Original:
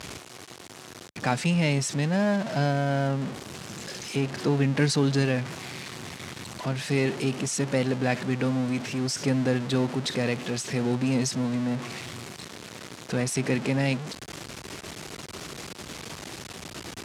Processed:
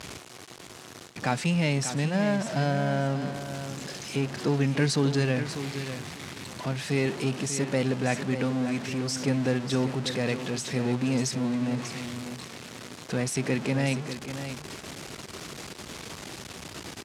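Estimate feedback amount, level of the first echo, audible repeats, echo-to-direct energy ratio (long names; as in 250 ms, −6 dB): 18%, −10.0 dB, 2, −10.0 dB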